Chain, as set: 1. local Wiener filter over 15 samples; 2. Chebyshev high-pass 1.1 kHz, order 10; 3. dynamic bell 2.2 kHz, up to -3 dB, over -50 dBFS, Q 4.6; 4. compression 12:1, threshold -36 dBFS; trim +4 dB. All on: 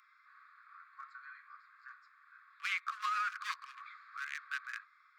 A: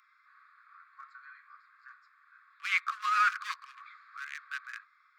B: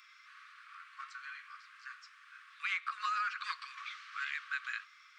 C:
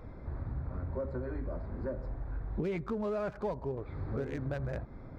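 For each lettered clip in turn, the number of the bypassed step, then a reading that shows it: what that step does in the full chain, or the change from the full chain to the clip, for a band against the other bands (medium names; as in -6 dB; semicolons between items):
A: 4, momentary loudness spread change +3 LU; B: 1, 8 kHz band -4.0 dB; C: 2, momentary loudness spread change -14 LU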